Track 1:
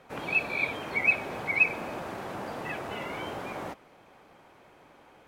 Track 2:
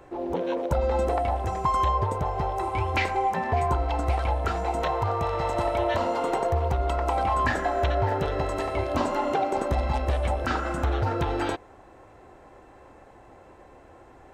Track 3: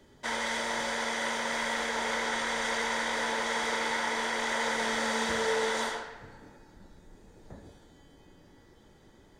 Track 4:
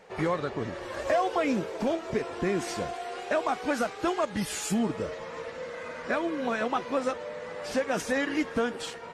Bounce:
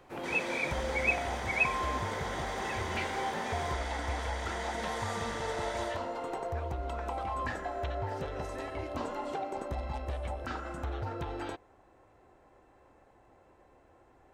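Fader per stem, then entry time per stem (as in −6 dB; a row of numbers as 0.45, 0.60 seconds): −5.5, −11.0, −9.5, −19.0 decibels; 0.00, 0.00, 0.00, 0.45 seconds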